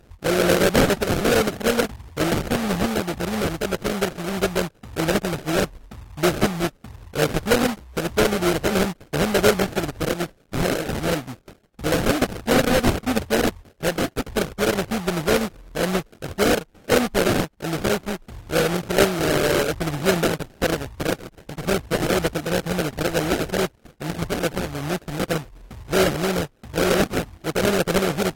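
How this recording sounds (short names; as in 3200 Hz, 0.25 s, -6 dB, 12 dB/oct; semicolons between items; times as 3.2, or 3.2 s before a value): aliases and images of a low sample rate 1000 Hz, jitter 20%; AAC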